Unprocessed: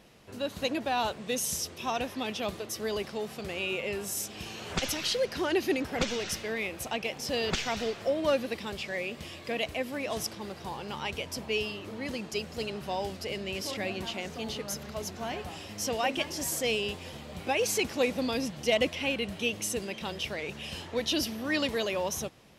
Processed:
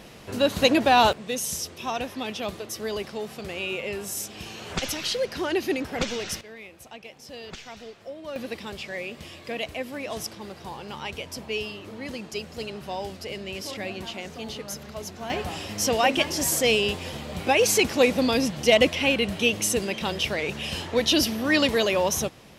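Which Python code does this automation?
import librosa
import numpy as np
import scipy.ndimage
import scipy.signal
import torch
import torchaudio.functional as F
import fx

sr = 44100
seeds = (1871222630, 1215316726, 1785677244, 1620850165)

y = fx.gain(x, sr, db=fx.steps((0.0, 11.5), (1.13, 2.0), (6.41, -10.0), (8.36, 0.5), (15.3, 8.0)))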